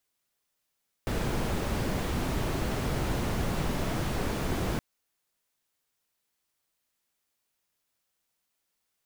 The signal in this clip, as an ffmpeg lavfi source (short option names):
-f lavfi -i "anoisesrc=c=brown:a=0.166:d=3.72:r=44100:seed=1"